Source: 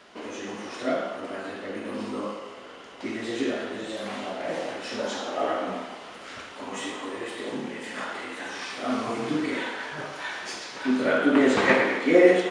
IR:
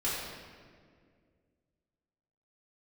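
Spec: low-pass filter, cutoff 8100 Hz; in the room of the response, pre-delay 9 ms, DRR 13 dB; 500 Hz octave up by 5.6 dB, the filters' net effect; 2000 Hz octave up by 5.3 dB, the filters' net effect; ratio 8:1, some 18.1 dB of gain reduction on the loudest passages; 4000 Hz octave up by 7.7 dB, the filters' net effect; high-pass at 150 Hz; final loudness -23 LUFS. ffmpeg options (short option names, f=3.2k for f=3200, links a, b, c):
-filter_complex "[0:a]highpass=150,lowpass=8.1k,equalizer=f=500:t=o:g=6.5,equalizer=f=2k:t=o:g=4,equalizer=f=4k:t=o:g=8.5,acompressor=threshold=-26dB:ratio=8,asplit=2[a][b];[1:a]atrim=start_sample=2205,adelay=9[c];[b][c]afir=irnorm=-1:irlink=0,volume=-20.5dB[d];[a][d]amix=inputs=2:normalize=0,volume=7.5dB"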